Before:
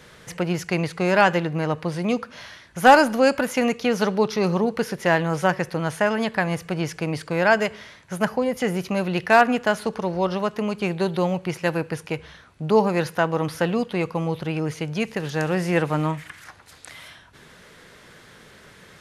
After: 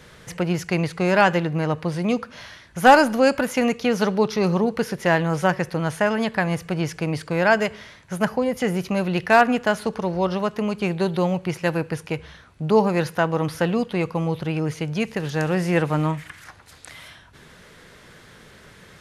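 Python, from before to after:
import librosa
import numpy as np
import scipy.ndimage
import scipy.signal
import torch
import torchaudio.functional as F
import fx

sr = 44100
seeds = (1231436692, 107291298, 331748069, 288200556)

y = fx.low_shelf(x, sr, hz=130.0, db=5.5)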